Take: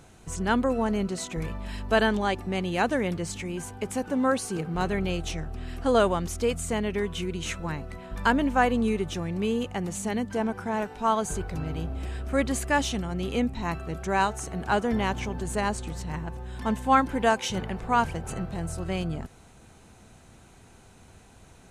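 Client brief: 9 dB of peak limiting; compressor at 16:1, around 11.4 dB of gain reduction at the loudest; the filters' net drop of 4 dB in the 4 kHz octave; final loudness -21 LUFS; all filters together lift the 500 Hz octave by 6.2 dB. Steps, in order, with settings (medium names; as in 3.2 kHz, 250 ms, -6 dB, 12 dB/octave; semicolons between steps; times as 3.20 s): peaking EQ 500 Hz +7.5 dB; peaking EQ 4 kHz -6 dB; compression 16:1, threshold -24 dBFS; trim +11.5 dB; peak limiter -10.5 dBFS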